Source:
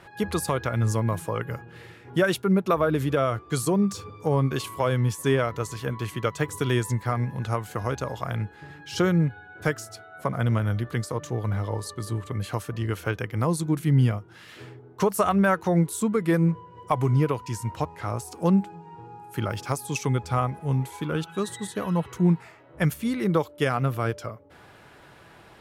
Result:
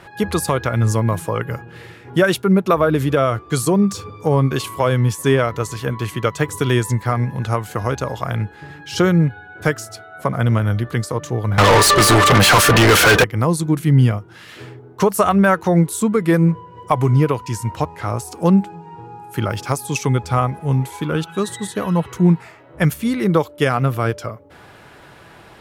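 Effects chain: 11.58–13.24 overdrive pedal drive 40 dB, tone 6400 Hz, clips at -10.5 dBFS; gain +7 dB

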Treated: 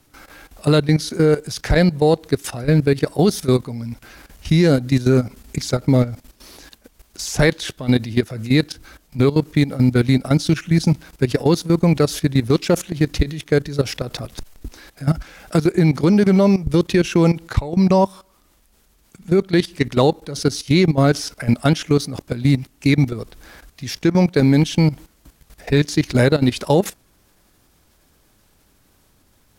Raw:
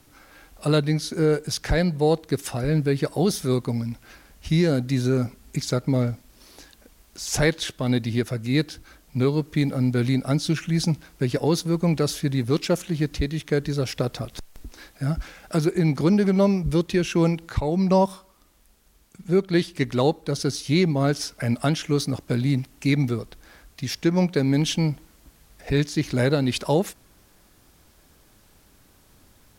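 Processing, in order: in parallel at +2 dB: limiter -13.5 dBFS, peak gain reduction 7.5 dB; on the sum: level quantiser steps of 15 dB; gain +2.5 dB

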